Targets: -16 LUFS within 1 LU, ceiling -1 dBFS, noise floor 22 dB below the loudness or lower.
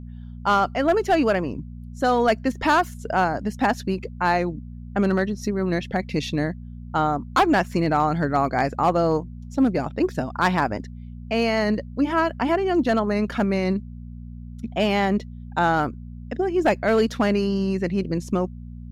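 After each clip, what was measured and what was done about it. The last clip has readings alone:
clipped samples 0.4%; clipping level -11.5 dBFS; hum 60 Hz; highest harmonic 240 Hz; hum level -34 dBFS; loudness -23.0 LUFS; peak level -11.5 dBFS; loudness target -16.0 LUFS
-> clip repair -11.5 dBFS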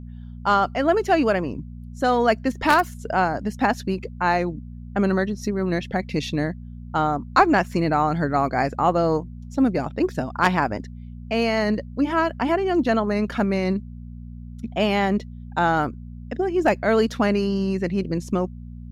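clipped samples 0.0%; hum 60 Hz; highest harmonic 240 Hz; hum level -34 dBFS
-> de-hum 60 Hz, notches 4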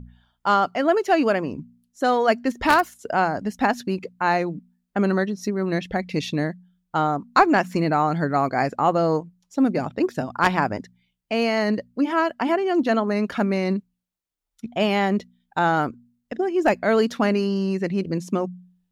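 hum not found; loudness -22.5 LUFS; peak level -2.5 dBFS; loudness target -16.0 LUFS
-> trim +6.5 dB; peak limiter -1 dBFS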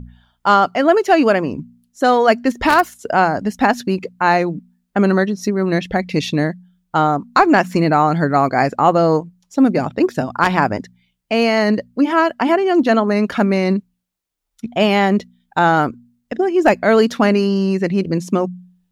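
loudness -16.5 LUFS; peak level -1.0 dBFS; noise floor -72 dBFS

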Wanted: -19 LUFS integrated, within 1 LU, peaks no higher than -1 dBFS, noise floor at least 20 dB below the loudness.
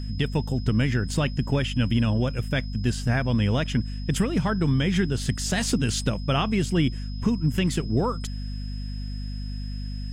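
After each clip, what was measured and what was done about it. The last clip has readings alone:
hum 50 Hz; highest harmonic 250 Hz; hum level -29 dBFS; steady tone 5.1 kHz; tone level -45 dBFS; loudness -25.5 LUFS; peak level -10.0 dBFS; loudness target -19.0 LUFS
-> de-hum 50 Hz, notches 5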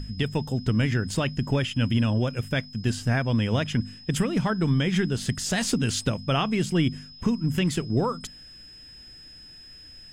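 hum not found; steady tone 5.1 kHz; tone level -45 dBFS
-> band-stop 5.1 kHz, Q 30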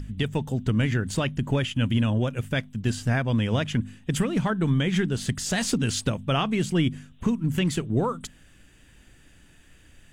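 steady tone not found; loudness -26.0 LUFS; peak level -11.0 dBFS; loudness target -19.0 LUFS
-> trim +7 dB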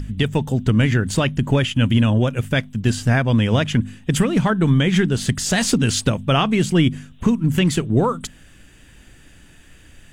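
loudness -19.0 LUFS; peak level -4.0 dBFS; noise floor -48 dBFS

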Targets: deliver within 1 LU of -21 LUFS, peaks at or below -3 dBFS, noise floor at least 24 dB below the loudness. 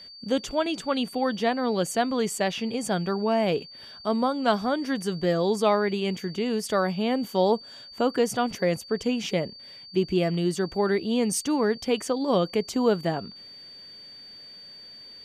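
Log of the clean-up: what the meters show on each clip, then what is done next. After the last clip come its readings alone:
steady tone 4.6 kHz; tone level -43 dBFS; loudness -26.0 LUFS; peak level -10.0 dBFS; loudness target -21.0 LUFS
-> band-stop 4.6 kHz, Q 30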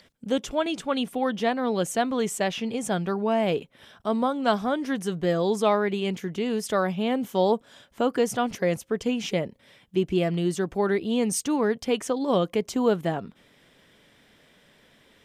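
steady tone not found; loudness -26.0 LUFS; peak level -9.5 dBFS; loudness target -21.0 LUFS
-> trim +5 dB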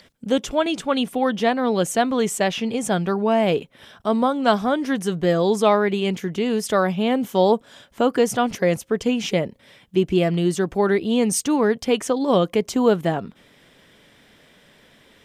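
loudness -21.0 LUFS; peak level -4.5 dBFS; noise floor -54 dBFS

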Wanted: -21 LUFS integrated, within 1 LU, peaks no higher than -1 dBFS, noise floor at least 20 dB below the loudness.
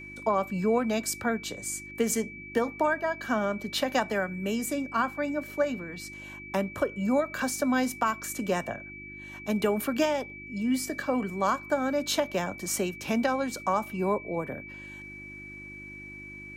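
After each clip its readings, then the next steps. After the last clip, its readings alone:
hum 50 Hz; highest harmonic 350 Hz; hum level -49 dBFS; steady tone 2.3 kHz; tone level -42 dBFS; loudness -29.0 LUFS; peak level -14.0 dBFS; loudness target -21.0 LUFS
-> de-hum 50 Hz, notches 7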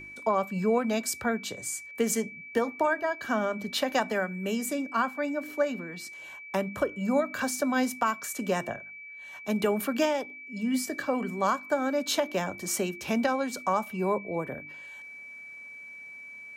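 hum not found; steady tone 2.3 kHz; tone level -42 dBFS
-> band-stop 2.3 kHz, Q 30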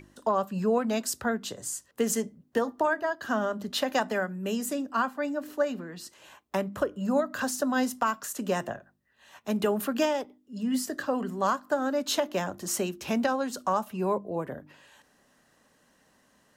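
steady tone not found; loudness -29.5 LUFS; peak level -14.0 dBFS; loudness target -21.0 LUFS
-> trim +8.5 dB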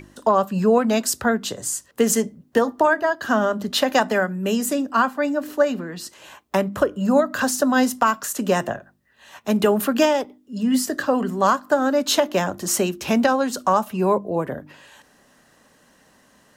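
loudness -21.0 LUFS; peak level -5.5 dBFS; noise floor -58 dBFS

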